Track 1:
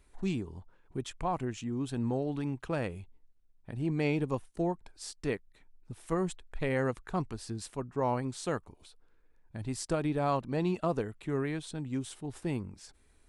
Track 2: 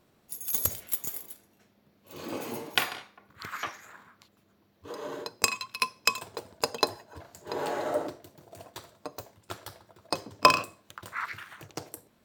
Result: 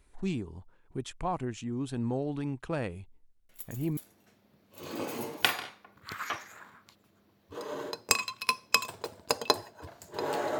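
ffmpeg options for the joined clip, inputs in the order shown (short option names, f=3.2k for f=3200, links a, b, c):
-filter_complex "[1:a]asplit=2[a][b];[0:a]apad=whole_dur=10.59,atrim=end=10.59,atrim=end=3.972[c];[b]atrim=start=1.298:end=7.92[d];[a]atrim=start=0.82:end=1.3,asetpts=PTS-STARTPTS,volume=-14dB,afade=t=in:d=0.004:c=hsin,afade=t=out:st=0.476:d=0.004:c=hsin,adelay=153909S[e];[c][d]acrossfade=d=0.004:c1=hsin:c2=hsin[f];[f][e]amix=inputs=2:normalize=0"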